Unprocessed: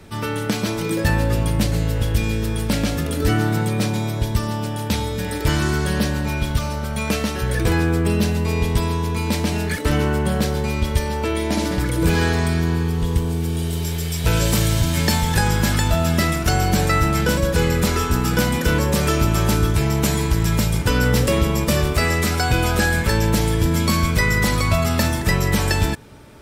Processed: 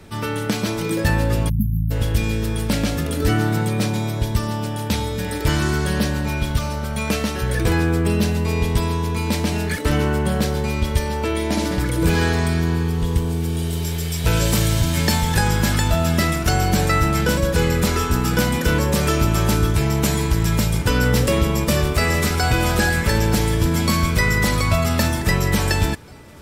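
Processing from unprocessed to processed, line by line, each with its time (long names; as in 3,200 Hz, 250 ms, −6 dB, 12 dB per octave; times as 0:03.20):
0:01.49–0:01.91: time-frequency box erased 270–11,000 Hz
0:21.54–0:22.43: delay throw 460 ms, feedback 75%, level −11 dB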